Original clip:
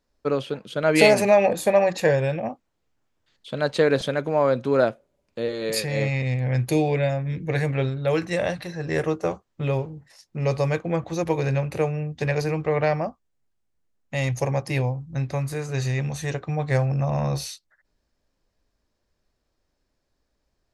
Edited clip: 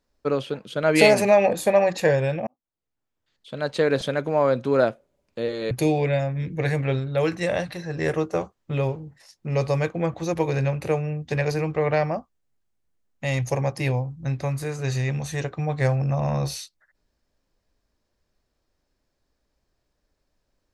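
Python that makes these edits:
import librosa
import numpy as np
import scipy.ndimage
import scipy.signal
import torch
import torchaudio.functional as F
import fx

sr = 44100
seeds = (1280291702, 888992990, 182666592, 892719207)

y = fx.edit(x, sr, fx.fade_in_span(start_s=2.47, length_s=1.69),
    fx.cut(start_s=5.71, length_s=0.9), tone=tone)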